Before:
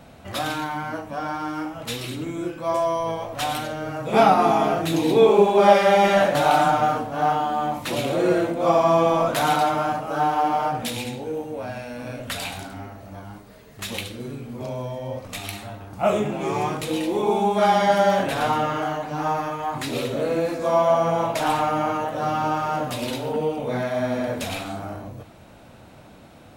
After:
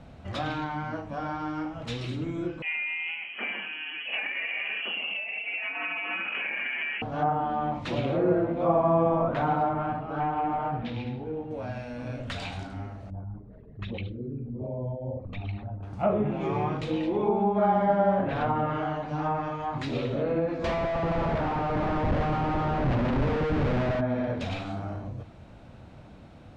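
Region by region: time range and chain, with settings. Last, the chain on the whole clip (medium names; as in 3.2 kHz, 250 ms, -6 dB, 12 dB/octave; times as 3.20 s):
2.62–7.02 s: frequency inversion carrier 3.1 kHz + Chebyshev high-pass 190 Hz, order 6 + compression 5:1, threshold -19 dBFS
9.73–11.51 s: band-stop 550 Hz, Q 6 + hard clipper -17.5 dBFS + distance through air 290 m
13.10–15.83 s: resonances exaggerated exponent 2 + distance through air 270 m
20.64–24.01 s: Schmitt trigger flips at -30 dBFS + treble shelf 3.8 kHz +9 dB
whole clip: low-pass that closes with the level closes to 1.3 kHz, closed at -17 dBFS; Bessel low-pass 4.9 kHz, order 2; bass shelf 170 Hz +10.5 dB; trim -5.5 dB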